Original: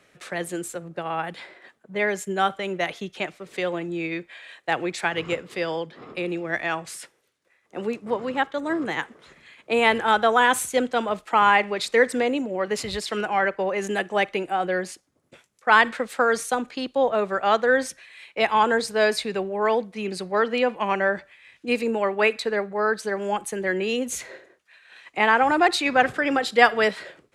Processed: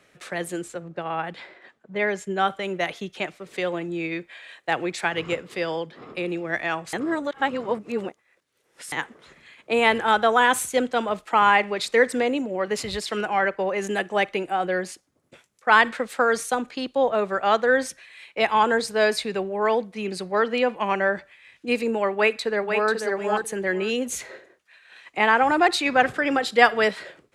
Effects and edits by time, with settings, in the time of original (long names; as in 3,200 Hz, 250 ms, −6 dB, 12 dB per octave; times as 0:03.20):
0:00.62–0:02.48: high-frequency loss of the air 63 metres
0:06.93–0:08.92: reverse
0:22.13–0:22.92: delay throw 490 ms, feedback 20%, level −5.5 dB